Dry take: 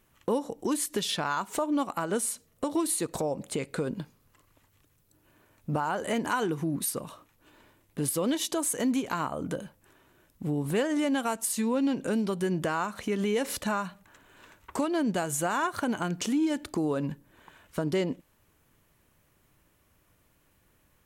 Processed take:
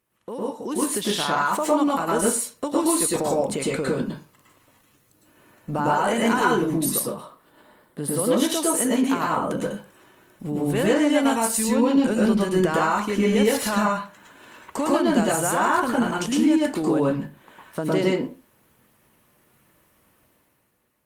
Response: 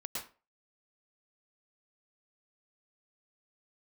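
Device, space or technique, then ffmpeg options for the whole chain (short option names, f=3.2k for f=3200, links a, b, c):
far-field microphone of a smart speaker: -filter_complex "[0:a]asettb=1/sr,asplit=3[a][b][c];[a]atrim=end=7.014[d];[b]atrim=start=7.01:end=8.3,asetpts=PTS-STARTPTS,afade=t=in:d=0.004:c=qsin,afade=t=out:st=1.286:d=0.004:c=qsin,equalizer=f=100:t=o:w=0.33:g=-8,equalizer=f=315:t=o:w=0.33:g=-4,equalizer=f=2.5k:t=o:w=0.33:g=-11,equalizer=f=6.3k:t=o:w=0.33:g=-10,equalizer=f=12.5k:t=o:w=0.33:g=-6[e];[c]atrim=start=8.296[f];[d][e]acrossfade=d=0.004:c1=hsin:c2=qsin[g];[g][f]acrossfade=d=0.004:c1=qsin:c2=hsin[h];[1:a]atrim=start_sample=2205[i];[h][i]afir=irnorm=-1:irlink=0,highpass=f=160:p=1,dynaudnorm=f=130:g=11:m=11dB,volume=-2.5dB" -ar 48000 -c:a libopus -b:a 32k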